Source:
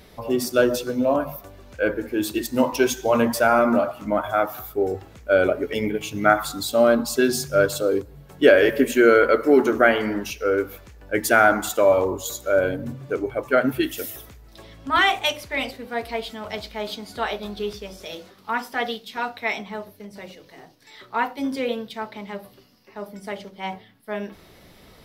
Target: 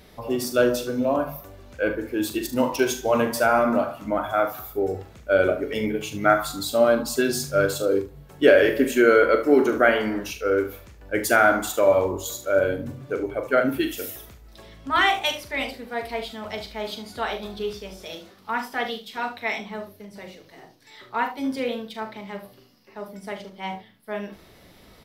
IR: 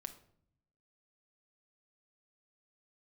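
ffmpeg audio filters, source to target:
-af "aecho=1:1:41|74:0.355|0.211,volume=0.794"

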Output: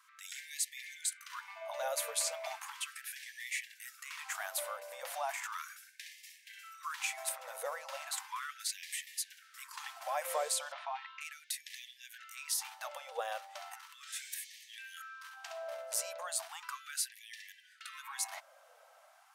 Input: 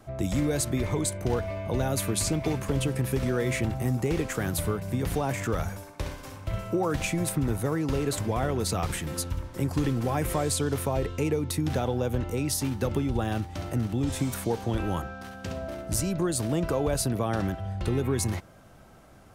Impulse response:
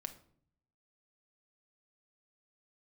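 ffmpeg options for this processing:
-filter_complex "[0:a]asettb=1/sr,asplit=3[s0][s1][s2];[s0]atrim=end=10.724[s3];[s1]atrim=start=10.72:end=11.21,asetpts=PTS-STARTPTS,afade=t=in:d=0.004:c=qsin,afade=t=out:st=0.486:d=0.004:c=qsin,lowpass=f=4000:w=0.5412,lowpass=f=4000:w=1.3066[s4];[s2]atrim=start=11.206[s5];[s3][s4]acrossfade=d=0.004:c1=hsin:c2=qsin[s6];[s6][s5]acrossfade=d=0.004:c1=qsin:c2=hsin,afftfilt=real='re*gte(b*sr/1024,470*pow(1700/470,0.5+0.5*sin(2*PI*0.36*pts/sr)))':imag='im*gte(b*sr/1024,470*pow(1700/470,0.5+0.5*sin(2*PI*0.36*pts/sr)))':win_size=1024:overlap=0.75,volume=0.596"

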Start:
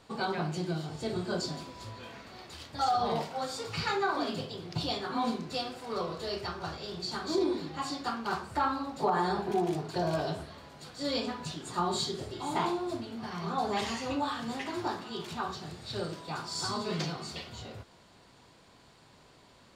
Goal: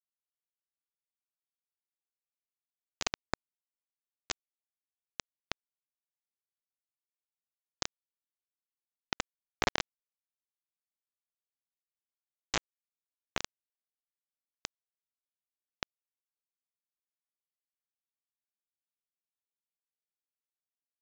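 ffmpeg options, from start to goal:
-af "acompressor=threshold=0.00178:ratio=1.5,aresample=16000,acrusher=bits=4:mix=0:aa=0.000001,aresample=44100,asetrate=41454,aresample=44100,volume=3.76"

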